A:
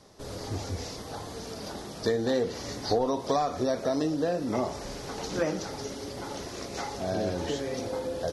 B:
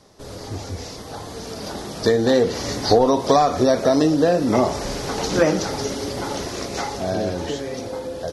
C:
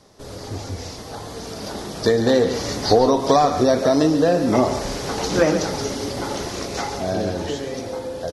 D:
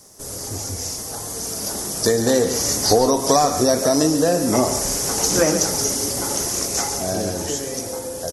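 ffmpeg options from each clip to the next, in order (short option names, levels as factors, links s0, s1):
-af "dynaudnorm=f=270:g=13:m=2.66,volume=1.41"
-af "aecho=1:1:139:0.299"
-af "aexciter=amount=6.5:drive=7.1:freq=5700,volume=0.891"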